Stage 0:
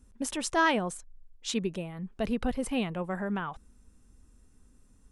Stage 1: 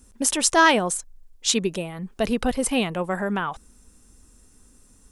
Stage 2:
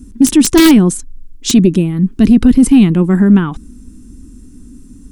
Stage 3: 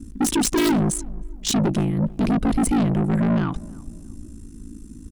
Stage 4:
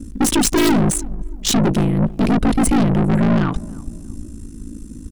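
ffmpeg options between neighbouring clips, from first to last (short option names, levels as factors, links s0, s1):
-af "bass=f=250:g=-5,treble=f=4000:g=7,volume=2.66"
-af "aeval=exprs='(mod(2.82*val(0)+1,2)-1)/2.82':c=same,lowshelf=f=410:t=q:w=3:g=13,apsyclip=2,volume=0.841"
-filter_complex "[0:a]aeval=exprs='val(0)*sin(2*PI*27*n/s)':c=same,asoftclip=type=tanh:threshold=0.15,asplit=2[s0][s1];[s1]adelay=317,lowpass=f=880:p=1,volume=0.1,asplit=2[s2][s3];[s3]adelay=317,lowpass=f=880:p=1,volume=0.41,asplit=2[s4][s5];[s5]adelay=317,lowpass=f=880:p=1,volume=0.41[s6];[s0][s2][s4][s6]amix=inputs=4:normalize=0"
-af "aeval=exprs='(tanh(8.91*val(0)+0.5)-tanh(0.5))/8.91':c=same,volume=2.51"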